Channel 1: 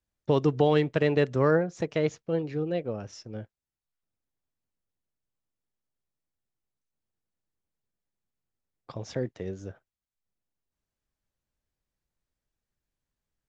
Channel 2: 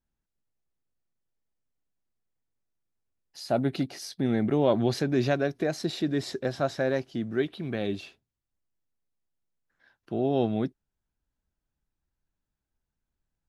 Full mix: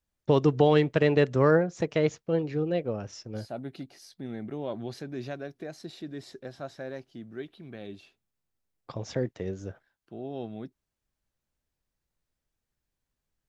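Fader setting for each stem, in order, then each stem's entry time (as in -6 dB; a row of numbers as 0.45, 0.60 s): +1.5, -11.5 dB; 0.00, 0.00 s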